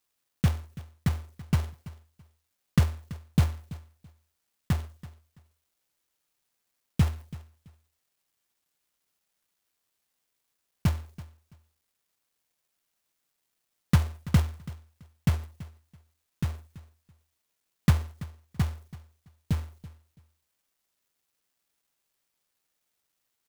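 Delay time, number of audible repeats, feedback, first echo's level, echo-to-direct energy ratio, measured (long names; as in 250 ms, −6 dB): 332 ms, 2, 21%, −18.0 dB, −18.0 dB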